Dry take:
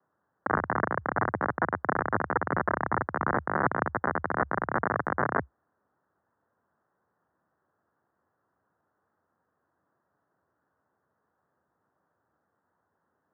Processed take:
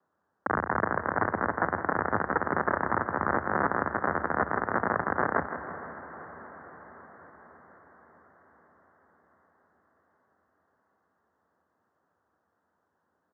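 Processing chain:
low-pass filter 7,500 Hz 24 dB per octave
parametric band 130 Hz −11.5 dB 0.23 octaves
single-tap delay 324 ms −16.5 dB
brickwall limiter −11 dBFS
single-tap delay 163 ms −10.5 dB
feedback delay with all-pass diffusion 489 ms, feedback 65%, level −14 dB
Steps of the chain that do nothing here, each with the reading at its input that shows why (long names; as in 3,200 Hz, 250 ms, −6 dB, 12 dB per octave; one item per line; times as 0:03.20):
low-pass filter 7,500 Hz: nothing at its input above 2,300 Hz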